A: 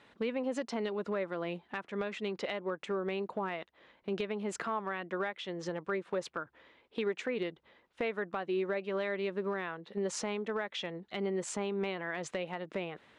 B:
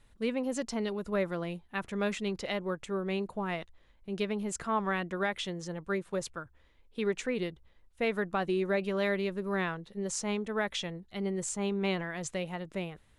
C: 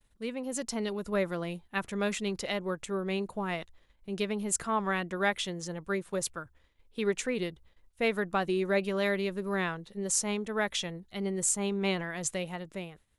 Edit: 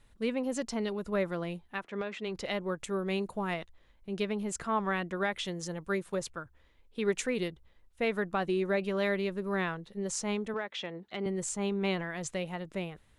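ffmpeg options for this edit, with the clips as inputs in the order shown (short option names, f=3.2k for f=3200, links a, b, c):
-filter_complex "[0:a]asplit=2[a][b];[2:a]asplit=3[c][d][e];[1:a]asplit=6[f][g][h][i][j][k];[f]atrim=end=1.87[l];[a]atrim=start=1.71:end=2.38[m];[g]atrim=start=2.22:end=2.802[n];[c]atrim=start=2.798:end=3.542[o];[h]atrim=start=3.538:end=5.452[p];[d]atrim=start=5.448:end=6.152[q];[i]atrim=start=6.148:end=7.082[r];[e]atrim=start=7.078:end=7.482[s];[j]atrim=start=7.478:end=10.542[t];[b]atrim=start=10.538:end=11.262[u];[k]atrim=start=11.258[v];[l][m]acrossfade=d=0.16:c1=tri:c2=tri[w];[w][n]acrossfade=d=0.16:c1=tri:c2=tri[x];[x][o]acrossfade=d=0.004:c1=hsin:c2=hsin[y];[y][p]acrossfade=d=0.004:c1=hsin:c2=hsin[z];[z][q]acrossfade=d=0.004:c1=hsin:c2=hsin[aa];[aa][r]acrossfade=d=0.004:c1=hsin:c2=hsin[ab];[ab][s]acrossfade=d=0.004:c1=hsin:c2=hsin[ac];[ac][t]acrossfade=d=0.004:c1=hsin:c2=hsin[ad];[ad][u]acrossfade=d=0.004:c1=hsin:c2=hsin[ae];[ae][v]acrossfade=d=0.004:c1=hsin:c2=hsin"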